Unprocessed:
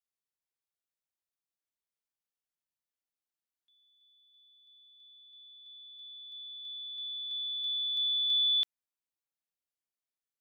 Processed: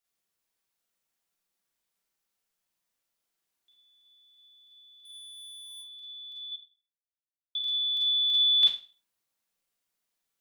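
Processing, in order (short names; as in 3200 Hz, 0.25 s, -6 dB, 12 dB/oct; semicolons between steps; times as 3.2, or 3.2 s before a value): 5.05–5.77 sample leveller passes 3; 6.52–7.55 mute; Schroeder reverb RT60 0.35 s, combs from 33 ms, DRR -3 dB; gain +6 dB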